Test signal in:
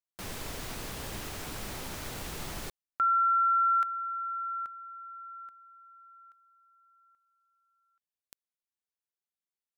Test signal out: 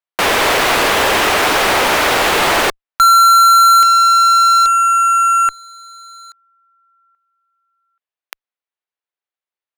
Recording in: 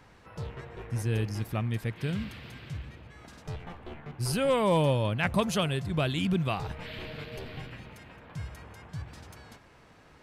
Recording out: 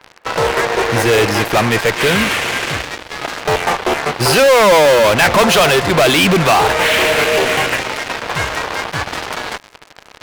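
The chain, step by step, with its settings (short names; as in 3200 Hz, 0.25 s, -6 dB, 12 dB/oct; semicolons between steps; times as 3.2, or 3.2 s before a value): three-band isolator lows -22 dB, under 370 Hz, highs -16 dB, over 3600 Hz; in parallel at -4 dB: fuzz box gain 48 dB, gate -53 dBFS; on the sum: gain +7 dB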